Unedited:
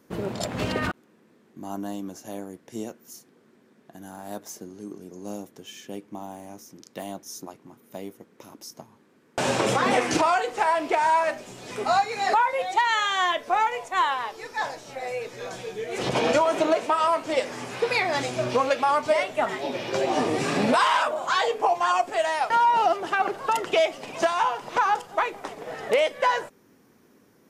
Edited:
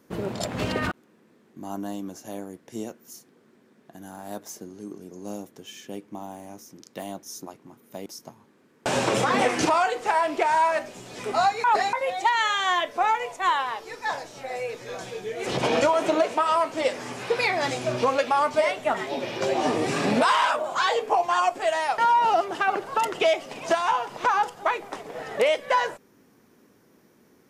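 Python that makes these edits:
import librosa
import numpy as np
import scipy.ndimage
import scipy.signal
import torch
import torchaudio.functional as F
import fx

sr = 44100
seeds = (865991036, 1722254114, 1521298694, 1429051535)

y = fx.edit(x, sr, fx.cut(start_s=8.06, length_s=0.52),
    fx.reverse_span(start_s=12.16, length_s=0.29), tone=tone)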